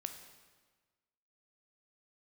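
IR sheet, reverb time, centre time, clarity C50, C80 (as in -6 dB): 1.4 s, 22 ms, 8.0 dB, 9.5 dB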